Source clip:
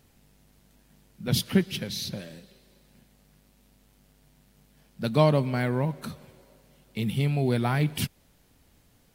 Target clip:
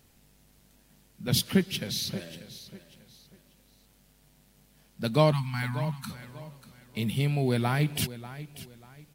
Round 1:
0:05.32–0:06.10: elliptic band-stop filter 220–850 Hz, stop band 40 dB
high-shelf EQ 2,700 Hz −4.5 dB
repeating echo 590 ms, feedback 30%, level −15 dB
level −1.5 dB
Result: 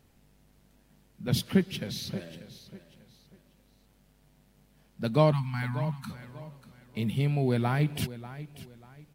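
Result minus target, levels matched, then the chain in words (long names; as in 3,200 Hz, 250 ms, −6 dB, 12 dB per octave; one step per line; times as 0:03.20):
4,000 Hz band −5.0 dB
0:05.32–0:06.10: elliptic band-stop filter 220–850 Hz, stop band 40 dB
high-shelf EQ 2,700 Hz +4 dB
repeating echo 590 ms, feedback 30%, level −15 dB
level −1.5 dB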